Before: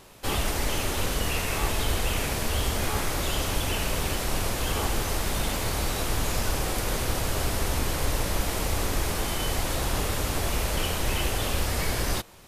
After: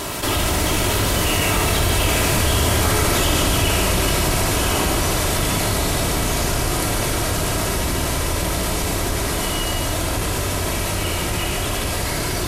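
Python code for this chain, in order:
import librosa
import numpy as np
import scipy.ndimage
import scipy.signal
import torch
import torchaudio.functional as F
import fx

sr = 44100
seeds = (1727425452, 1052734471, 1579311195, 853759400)

y = fx.doppler_pass(x, sr, speed_mps=15, closest_m=19.0, pass_at_s=2.82)
y = fx.highpass(y, sr, hz=70.0, slope=6)
y = fx.peak_eq(y, sr, hz=8900.0, db=2.5, octaves=0.77)
y = y + 10.0 ** (-6.0 / 20.0) * np.pad(y, (int(146 * sr / 1000.0), 0))[:len(y)]
y = fx.room_shoebox(y, sr, seeds[0], volume_m3=2400.0, walls='furnished', distance_m=2.9)
y = fx.env_flatten(y, sr, amount_pct=70)
y = y * 10.0 ** (5.0 / 20.0)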